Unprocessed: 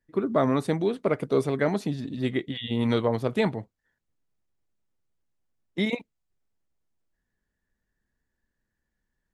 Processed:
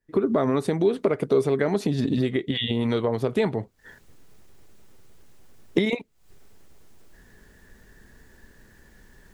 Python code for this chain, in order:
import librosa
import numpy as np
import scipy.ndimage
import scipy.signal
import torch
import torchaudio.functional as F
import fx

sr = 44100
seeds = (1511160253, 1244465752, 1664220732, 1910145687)

y = fx.recorder_agc(x, sr, target_db=-14.5, rise_db_per_s=80.0, max_gain_db=30)
y = fx.peak_eq(y, sr, hz=410.0, db=6.0, octaves=0.31)
y = y * librosa.db_to_amplitude(-2.0)